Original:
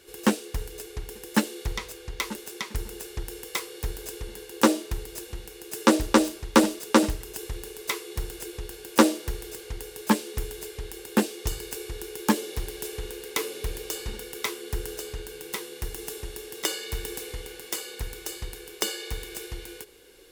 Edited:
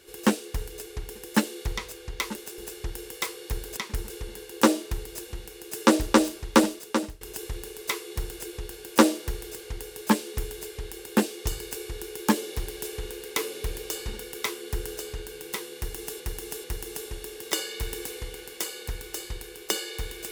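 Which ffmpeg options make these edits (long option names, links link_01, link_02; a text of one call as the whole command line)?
ffmpeg -i in.wav -filter_complex "[0:a]asplit=7[link_01][link_02][link_03][link_04][link_05][link_06][link_07];[link_01]atrim=end=2.582[link_08];[link_02]atrim=start=2.908:end=4.102[link_09];[link_03]atrim=start=2.578:end=2.912[link_10];[link_04]atrim=start=4.098:end=7.21,asetpts=PTS-STARTPTS,afade=type=out:start_time=2.442:duration=0.67:silence=0.105925[link_11];[link_05]atrim=start=7.21:end=16.202,asetpts=PTS-STARTPTS,afade=type=in:duration=0.004:curve=hsin:silence=0.105925[link_12];[link_06]atrim=start=15.758:end=16.202[link_13];[link_07]atrim=start=15.758[link_14];[link_08][link_09]acrossfade=duration=0.004:curve1=hsin:curve2=hsin[link_15];[link_15][link_10]acrossfade=duration=0.004:curve1=hsin:curve2=hsin[link_16];[link_11][link_12]concat=n=2:v=0:a=1[link_17];[link_16][link_17]acrossfade=duration=0.004:curve1=hsin:curve2=hsin[link_18];[link_18][link_13]acrossfade=duration=0.004:curve1=hsin:curve2=hsin[link_19];[link_19][link_14]acrossfade=duration=0.004:curve1=hsin:curve2=hsin" out.wav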